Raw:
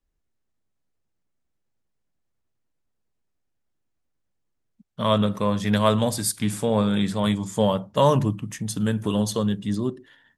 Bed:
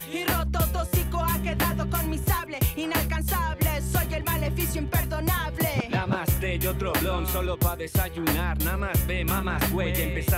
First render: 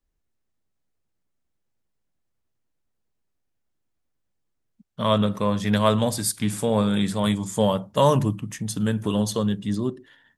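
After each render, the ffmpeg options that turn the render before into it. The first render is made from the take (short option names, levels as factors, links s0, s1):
-filter_complex "[0:a]asettb=1/sr,asplit=3[s0][s1][s2];[s0]atrim=end=6.584[s3];[s1]atrim=start=6.58:end=8.41,asetpts=PTS-STARTPTS,afade=t=in:d=0.004:c=qsin,afade=t=out:st=1.826:d=0.004:c=qsin,equalizer=f=10000:w=0.9:g=5.5[s4];[s2]atrim=start=8.406[s5];[s3][s4]acrossfade=d=0.004:c1=hsin:c2=qsin[s6];[s6][s5]acrossfade=d=0.004:c1=qsin:c2=hsin"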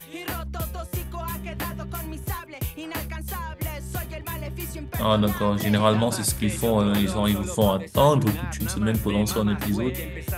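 -filter_complex "[1:a]volume=0.501[s0];[0:a][s0]amix=inputs=2:normalize=0"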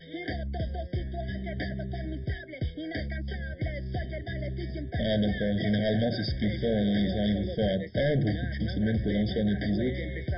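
-af "aresample=11025,asoftclip=type=tanh:threshold=0.0891,aresample=44100,afftfilt=real='re*eq(mod(floor(b*sr/1024/760),2),0)':imag='im*eq(mod(floor(b*sr/1024/760),2),0)':win_size=1024:overlap=0.75"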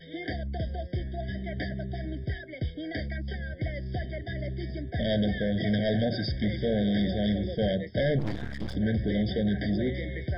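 -filter_complex "[0:a]asplit=3[s0][s1][s2];[s0]afade=t=out:st=8.18:d=0.02[s3];[s1]aeval=exprs='max(val(0),0)':c=same,afade=t=in:st=8.18:d=0.02,afade=t=out:st=8.74:d=0.02[s4];[s2]afade=t=in:st=8.74:d=0.02[s5];[s3][s4][s5]amix=inputs=3:normalize=0"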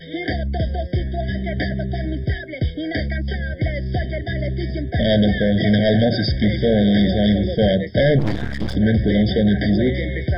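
-af "volume=3.35"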